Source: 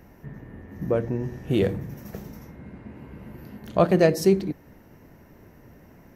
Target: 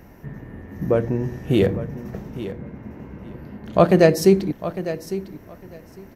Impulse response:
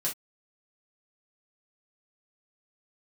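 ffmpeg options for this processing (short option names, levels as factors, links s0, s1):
-filter_complex "[0:a]asettb=1/sr,asplit=3[s0][s1][s2];[s0]atrim=end=1.664[s3];[s1]atrim=start=1.66:end=3.73,asetpts=PTS-STARTPTS,afade=t=in:d=0.004:c=qsin,afade=t=out:st=2.066:d=0.004:c=qsin,lowpass=f=2000:p=1[s4];[s2]atrim=start=3.726[s5];[s3][s4]acrossfade=d=0.004:c1=hsin:c2=qsin[s6];[s6][s5]acrossfade=d=0.004:c1=qsin:c2=hsin,aecho=1:1:854|1708:0.224|0.0358,volume=1.68"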